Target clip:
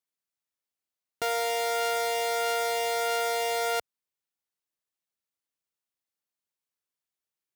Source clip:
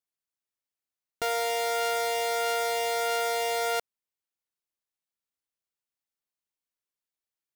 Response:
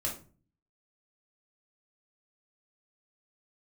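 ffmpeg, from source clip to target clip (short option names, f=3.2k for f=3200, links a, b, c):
-af "highpass=62"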